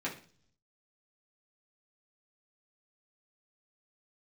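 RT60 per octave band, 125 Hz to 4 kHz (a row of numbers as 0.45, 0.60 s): 0.95, 0.70, 0.50, 0.40, 0.40, 0.55 s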